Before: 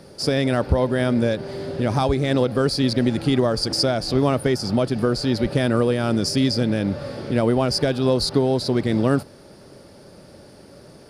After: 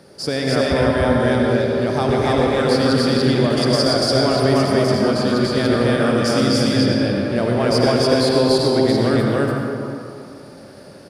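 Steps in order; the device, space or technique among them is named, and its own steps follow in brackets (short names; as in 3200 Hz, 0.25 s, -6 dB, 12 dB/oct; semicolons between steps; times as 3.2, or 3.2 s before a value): stadium PA (HPF 120 Hz 6 dB/oct; bell 1600 Hz +3 dB 0.49 oct; loudspeakers at several distances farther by 85 m -11 dB, 99 m 0 dB; reverb RT60 2.4 s, pre-delay 75 ms, DRR 0 dB); gain -1.5 dB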